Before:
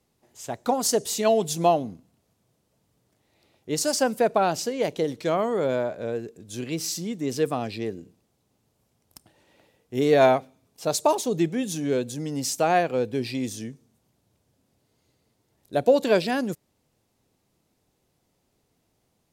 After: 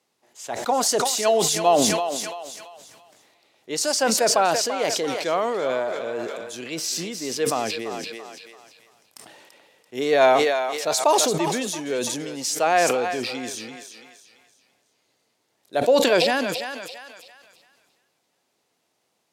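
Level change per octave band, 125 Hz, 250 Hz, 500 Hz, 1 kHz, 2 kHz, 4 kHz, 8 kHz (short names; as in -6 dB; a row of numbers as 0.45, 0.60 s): -5.0, -1.5, +2.0, +4.0, +6.5, +8.0, +6.5 dB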